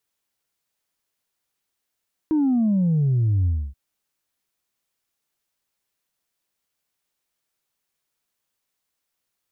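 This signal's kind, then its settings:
bass drop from 320 Hz, over 1.43 s, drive 0.5 dB, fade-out 0.28 s, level −17 dB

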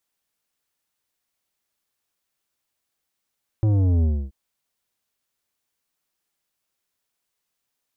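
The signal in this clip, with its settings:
bass drop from 110 Hz, over 0.68 s, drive 10.5 dB, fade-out 0.28 s, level −17 dB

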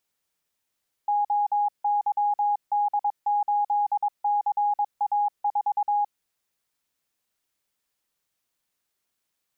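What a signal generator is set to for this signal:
Morse code "OYD8CA4" 22 words per minute 825 Hz −20 dBFS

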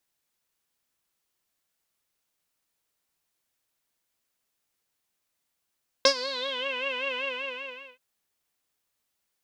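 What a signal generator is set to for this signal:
subtractive patch with vibrato C5, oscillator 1 saw, sub −21 dB, noise −22 dB, filter lowpass, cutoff 2,700 Hz, Q 9, filter envelope 1 octave, filter decay 0.65 s, filter sustain 5%, attack 3.5 ms, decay 0.08 s, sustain −16 dB, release 0.80 s, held 1.13 s, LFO 5.2 Hz, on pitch 99 cents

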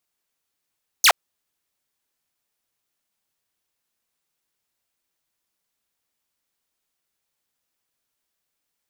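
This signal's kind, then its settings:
single falling chirp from 7,000 Hz, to 570 Hz, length 0.07 s saw, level −7.5 dB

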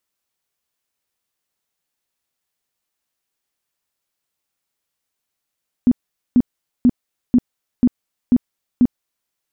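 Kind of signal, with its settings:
tone bursts 246 Hz, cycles 11, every 0.49 s, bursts 7, −8 dBFS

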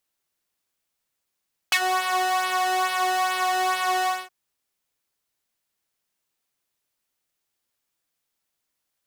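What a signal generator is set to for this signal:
subtractive patch with pulse-width modulation F#4, oscillator 2 square, sub −18.5 dB, filter highpass, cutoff 710 Hz, Q 2, filter envelope 2 octaves, filter decay 0.10 s, filter sustain 10%, attack 3 ms, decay 0.07 s, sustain −11 dB, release 0.23 s, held 2.34 s, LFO 2.3 Hz, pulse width 19%, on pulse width 14%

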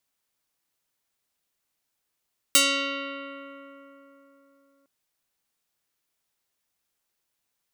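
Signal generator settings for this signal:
Karplus-Strong string C#4, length 2.31 s, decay 3.83 s, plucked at 0.33, medium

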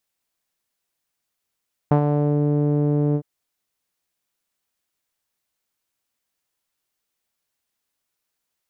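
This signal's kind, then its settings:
subtractive voice saw D3 12 dB per octave, low-pass 430 Hz, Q 1.6, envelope 1 octave, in 0.49 s, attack 3.3 ms, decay 0.09 s, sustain −6 dB, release 0.07 s, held 1.24 s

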